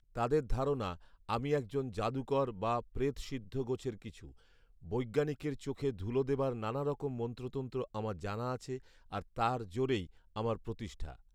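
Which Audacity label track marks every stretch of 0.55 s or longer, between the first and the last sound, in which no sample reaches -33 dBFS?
4.080000	4.920000	silence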